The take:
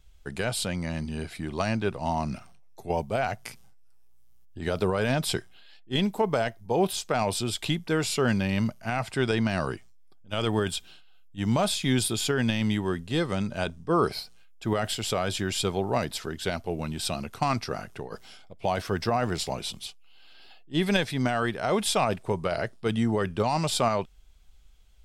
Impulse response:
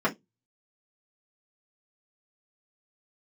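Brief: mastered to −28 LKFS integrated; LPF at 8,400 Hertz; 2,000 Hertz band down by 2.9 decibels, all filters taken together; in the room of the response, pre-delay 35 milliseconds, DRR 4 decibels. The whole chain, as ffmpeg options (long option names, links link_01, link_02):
-filter_complex "[0:a]lowpass=8400,equalizer=frequency=2000:width_type=o:gain=-4,asplit=2[link_01][link_02];[1:a]atrim=start_sample=2205,adelay=35[link_03];[link_02][link_03]afir=irnorm=-1:irlink=0,volume=-17dB[link_04];[link_01][link_04]amix=inputs=2:normalize=0,volume=-1.5dB"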